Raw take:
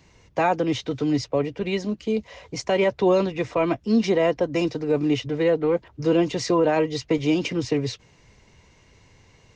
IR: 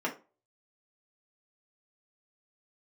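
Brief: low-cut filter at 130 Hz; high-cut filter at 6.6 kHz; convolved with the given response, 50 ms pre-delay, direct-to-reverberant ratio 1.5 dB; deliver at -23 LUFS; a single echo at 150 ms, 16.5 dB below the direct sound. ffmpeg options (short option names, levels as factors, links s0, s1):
-filter_complex "[0:a]highpass=130,lowpass=6600,aecho=1:1:150:0.15,asplit=2[s0][s1];[1:a]atrim=start_sample=2205,adelay=50[s2];[s1][s2]afir=irnorm=-1:irlink=0,volume=0.355[s3];[s0][s3]amix=inputs=2:normalize=0,volume=0.75"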